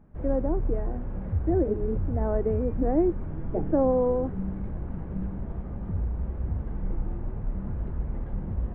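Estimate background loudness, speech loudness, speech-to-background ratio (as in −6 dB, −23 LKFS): −33.5 LKFS, −28.0 LKFS, 5.5 dB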